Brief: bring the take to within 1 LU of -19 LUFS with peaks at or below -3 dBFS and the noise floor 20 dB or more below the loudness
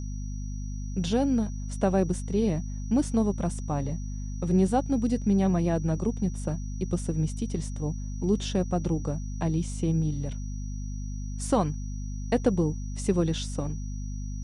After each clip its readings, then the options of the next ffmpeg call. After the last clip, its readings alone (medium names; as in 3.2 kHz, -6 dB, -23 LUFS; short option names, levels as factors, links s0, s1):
hum 50 Hz; highest harmonic 250 Hz; hum level -31 dBFS; steady tone 5.8 kHz; tone level -50 dBFS; loudness -29.0 LUFS; peak level -11.0 dBFS; loudness target -19.0 LUFS
-> -af "bandreject=f=50:t=h:w=6,bandreject=f=100:t=h:w=6,bandreject=f=150:t=h:w=6,bandreject=f=200:t=h:w=6,bandreject=f=250:t=h:w=6"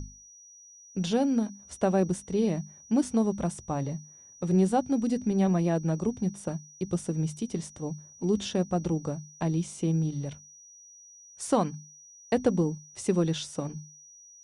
hum not found; steady tone 5.8 kHz; tone level -50 dBFS
-> -af "bandreject=f=5800:w=30"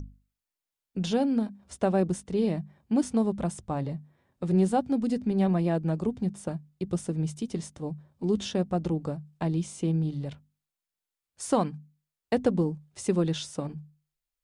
steady tone not found; loudness -29.0 LUFS; peak level -12.0 dBFS; loudness target -19.0 LUFS
-> -af "volume=3.16,alimiter=limit=0.708:level=0:latency=1"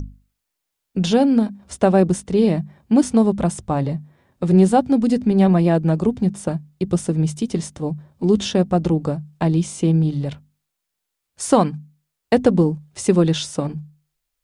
loudness -19.0 LUFS; peak level -3.0 dBFS; noise floor -80 dBFS